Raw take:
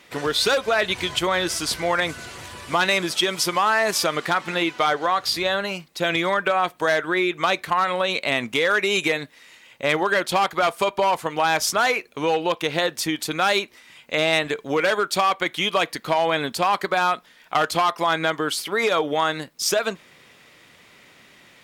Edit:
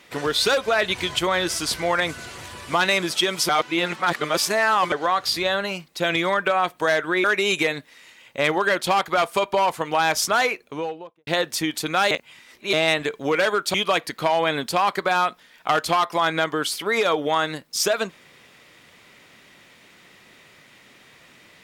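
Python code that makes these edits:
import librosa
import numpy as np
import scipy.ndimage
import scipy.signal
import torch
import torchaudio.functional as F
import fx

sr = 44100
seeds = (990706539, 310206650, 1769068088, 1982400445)

y = fx.studio_fade_out(x, sr, start_s=11.85, length_s=0.87)
y = fx.edit(y, sr, fx.reverse_span(start_s=3.49, length_s=1.43),
    fx.cut(start_s=7.24, length_s=1.45),
    fx.reverse_span(start_s=13.56, length_s=0.62),
    fx.cut(start_s=15.19, length_s=0.41), tone=tone)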